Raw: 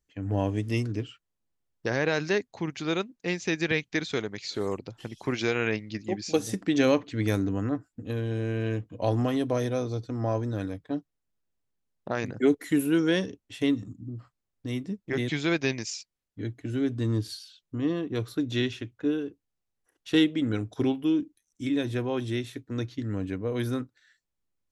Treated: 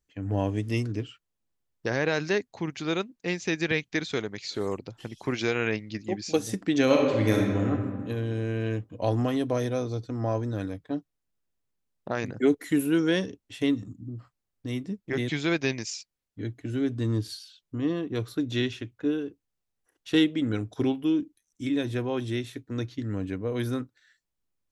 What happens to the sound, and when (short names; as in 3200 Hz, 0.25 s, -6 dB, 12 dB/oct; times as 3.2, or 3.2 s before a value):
6.84–7.7 reverb throw, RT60 1.6 s, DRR -1 dB